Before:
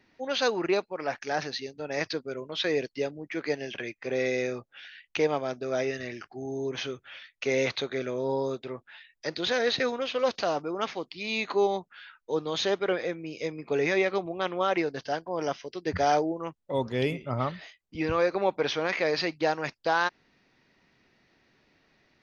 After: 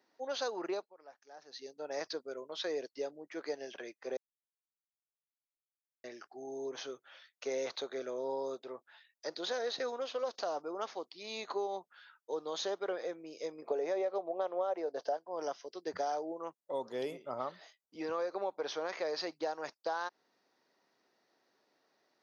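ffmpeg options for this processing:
ffmpeg -i in.wav -filter_complex "[0:a]asettb=1/sr,asplit=3[link_01][link_02][link_03];[link_01]atrim=end=13.624[link_04];[link_02]atrim=start=13.62:end=15.17,asetpts=PTS-STARTPTS,afade=type=in:duration=0.004:curve=qsin,afade=type=out:start_time=1.546:duration=0.004:curve=qsin,equalizer=frequency=590:width_type=o:width=1.4:gain=13[link_05];[link_03]atrim=start=15.166[link_06];[link_04][link_05]acrossfade=duration=0.004:curve1=hsin:curve2=qsin[link_07];[link_07][link_06]acrossfade=duration=0.004:curve1=qsin:curve2=hsin,asplit=5[link_08][link_09][link_10][link_11][link_12];[link_08]atrim=end=0.94,asetpts=PTS-STARTPTS,afade=type=out:start_time=0.69:duration=0.25:silence=0.11885[link_13];[link_09]atrim=start=0.94:end=1.45,asetpts=PTS-STARTPTS,volume=-18.5dB[link_14];[link_10]atrim=start=1.45:end=4.17,asetpts=PTS-STARTPTS,afade=type=in:duration=0.25:silence=0.11885,afade=type=out:start_time=2.716:duration=0.004:curve=hsin[link_15];[link_11]atrim=start=4.17:end=6.04,asetpts=PTS-STARTPTS,volume=0[link_16];[link_12]atrim=start=6.04,asetpts=PTS-STARTPTS,afade=type=in:duration=0.004:curve=hsin[link_17];[link_13][link_14][link_15][link_16][link_17]concat=n=5:v=0:a=1,highpass=490,equalizer=frequency=2400:width_type=o:width=1.3:gain=-14,acompressor=threshold=-30dB:ratio=6,volume=-2dB" out.wav

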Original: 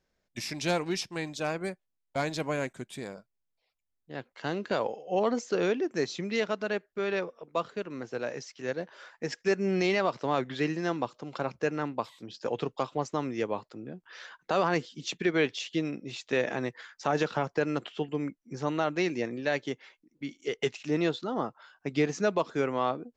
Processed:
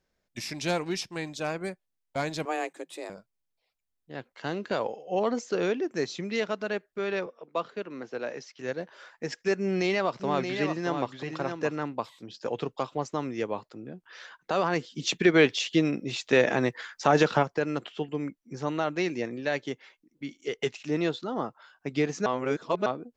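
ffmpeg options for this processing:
ffmpeg -i in.wav -filter_complex "[0:a]asettb=1/sr,asplit=3[link_01][link_02][link_03];[link_01]atrim=end=2.454[link_04];[link_02]atrim=start=2.45:end=3.1,asetpts=PTS-STARTPTS,afade=type=in:duration=0.004:curve=qsin,afade=type=out:start_time=0.646:duration=0.004:curve=qsin,afreqshift=160[link_05];[link_03]atrim=start=3.096[link_06];[link_04][link_05]acrossfade=duration=0.004:curve1=hsin:curve2=qsin[link_07];[link_07][link_06]acrossfade=duration=0.004:curve1=qsin:curve2=hsin,asettb=1/sr,asplit=3[link_08][link_09][link_10];[link_08]atrim=end=7.264[link_11];[link_09]atrim=start=7.26:end=8.59,asetpts=PTS-STARTPTS,afade=type=in:duration=0.004:curve=qsin,afade=type=out:start_time=1.326:duration=0.004:curve=qsin,acrossover=split=160 6200:gain=0.224 1 0.224[link_12][link_13][link_14];[link_12][link_13][link_14]amix=inputs=3:normalize=0[link_15];[link_10]atrim=start=8.586[link_16];[link_11][link_15]acrossfade=duration=0.004:curve1=hsin:curve2=qsin[link_17];[link_17][link_16]acrossfade=duration=0.004:curve1=qsin:curve2=hsin,asettb=1/sr,asplit=3[link_18][link_19][link_20];[link_18]atrim=end=9.574[link_21];[link_19]atrim=start=9.57:end=11.84,asetpts=PTS-STARTPTS,afade=type=in:duration=0.004:curve=qsin,afade=type=out:start_time=2.266:duration=0.004:curve=qsin,aecho=1:1:626:0.473,atrim=end_sample=100107[link_22];[link_20]atrim=start=11.836[link_23];[link_21][link_22]acrossfade=duration=0.004:curve1=hsin:curve2=qsin[link_24];[link_24][link_23]acrossfade=duration=0.004:curve1=qsin:curve2=hsin,asplit=3[link_25][link_26][link_27];[link_25]afade=type=out:start_time=14.95:duration=0.02[link_28];[link_26]acontrast=69,afade=type=in:start_time=14.95:duration=0.02,afade=type=out:start_time=17.42:duration=0.02[link_29];[link_27]afade=type=in:start_time=17.42:duration=0.02[link_30];[link_28][link_29][link_30]amix=inputs=3:normalize=0,asplit=3[link_31][link_32][link_33];[link_31]atrim=end=22.262[link_34];[link_32]atrim=start=22.258:end=22.862,asetpts=PTS-STARTPTS,areverse[link_35];[link_33]atrim=start=22.858[link_36];[link_34][link_35]acrossfade=duration=0.004:curve1=hsin:curve2=hsin[link_37];[link_37][link_36]acrossfade=duration=0.004:curve1=hsin:curve2=hsin" out.wav

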